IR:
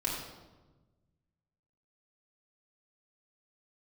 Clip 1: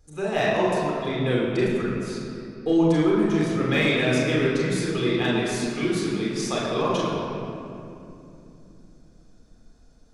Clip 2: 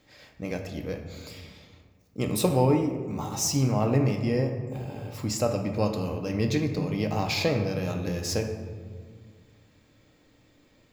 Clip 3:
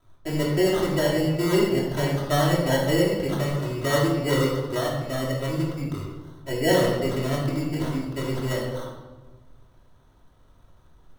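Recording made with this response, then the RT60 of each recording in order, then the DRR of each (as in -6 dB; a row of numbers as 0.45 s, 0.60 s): 3; 2.8 s, 1.9 s, 1.2 s; -5.5 dB, 3.5 dB, -5.5 dB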